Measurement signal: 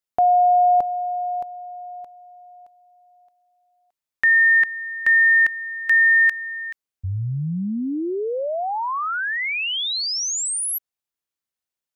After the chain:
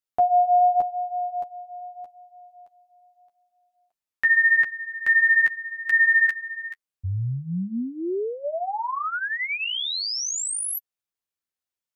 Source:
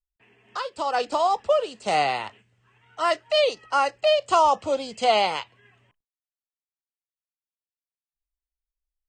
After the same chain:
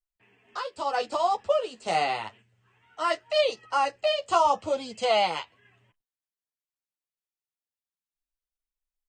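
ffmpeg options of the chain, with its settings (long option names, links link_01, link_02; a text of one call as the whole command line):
ffmpeg -i in.wav -af "flanger=delay=8.2:depth=4.7:regen=-12:speed=0.83:shape=triangular" out.wav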